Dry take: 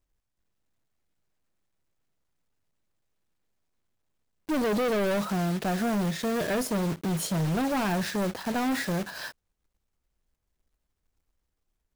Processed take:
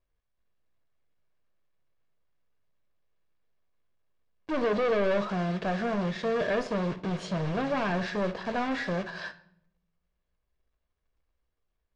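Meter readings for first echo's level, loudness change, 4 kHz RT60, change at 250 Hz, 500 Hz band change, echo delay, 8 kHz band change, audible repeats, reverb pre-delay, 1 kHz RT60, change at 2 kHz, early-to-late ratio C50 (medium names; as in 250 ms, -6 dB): no echo, -1.5 dB, 0.50 s, -4.0 dB, +1.0 dB, no echo, under -15 dB, no echo, 15 ms, 0.60 s, 0.0 dB, 15.0 dB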